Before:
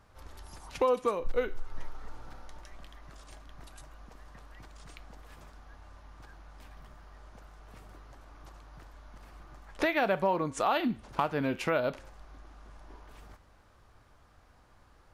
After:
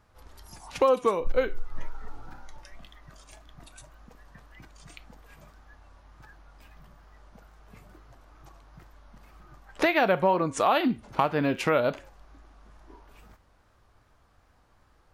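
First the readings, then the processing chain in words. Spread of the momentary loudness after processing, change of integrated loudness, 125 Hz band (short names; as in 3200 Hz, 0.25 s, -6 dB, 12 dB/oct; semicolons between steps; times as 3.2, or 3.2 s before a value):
9 LU, +5.0 dB, +4.5 dB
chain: spectral noise reduction 7 dB; wow and flutter 73 cents; gain +5 dB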